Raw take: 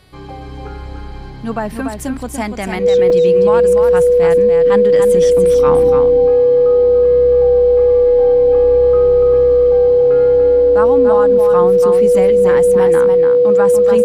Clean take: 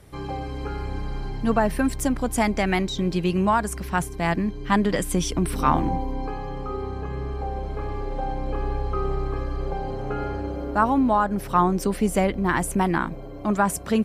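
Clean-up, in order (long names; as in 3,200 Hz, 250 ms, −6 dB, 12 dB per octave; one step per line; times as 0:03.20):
hum removal 371.3 Hz, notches 13
notch filter 490 Hz, Q 30
repair the gap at 0:03.10, 2.9 ms
echo removal 290 ms −6 dB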